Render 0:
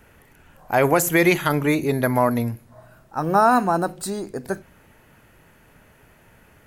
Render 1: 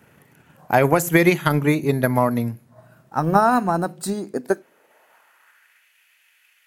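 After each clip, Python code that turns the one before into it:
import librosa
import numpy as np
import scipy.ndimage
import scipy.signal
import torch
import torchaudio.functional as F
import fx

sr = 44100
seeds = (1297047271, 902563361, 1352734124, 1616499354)

y = fx.filter_sweep_highpass(x, sr, from_hz=140.0, to_hz=2500.0, start_s=4.07, end_s=5.89, q=1.8)
y = fx.transient(y, sr, attack_db=6, sustain_db=-3)
y = F.gain(torch.from_numpy(y), -2.0).numpy()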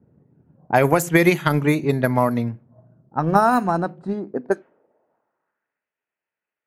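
y = fx.env_lowpass(x, sr, base_hz=360.0, full_db=-13.5)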